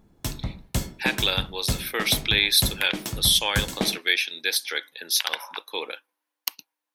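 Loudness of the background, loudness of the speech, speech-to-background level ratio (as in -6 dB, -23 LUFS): -31.5 LUFS, -23.5 LUFS, 8.0 dB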